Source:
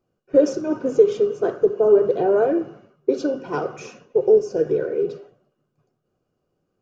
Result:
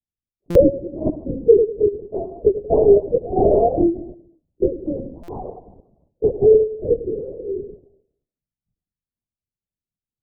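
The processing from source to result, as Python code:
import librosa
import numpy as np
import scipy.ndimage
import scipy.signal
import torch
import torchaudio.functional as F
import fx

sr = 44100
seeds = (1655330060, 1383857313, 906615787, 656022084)

p1 = fx.bin_expand(x, sr, power=1.5)
p2 = fx.echo_feedback(p1, sr, ms=62, feedback_pct=44, wet_db=-11.0)
p3 = fx.level_steps(p2, sr, step_db=22)
p4 = p2 + F.gain(torch.from_numpy(p3), 1.5).numpy()
p5 = scipy.signal.sosfilt(scipy.signal.butter(8, 790.0, 'lowpass', fs=sr, output='sos'), p4)
p6 = fx.stretch_vocoder(p5, sr, factor=1.5)
p7 = fx.lpc_vocoder(p6, sr, seeds[0], excitation='whisper', order=8)
y = fx.buffer_glitch(p7, sr, at_s=(0.5, 5.23), block=256, repeats=8)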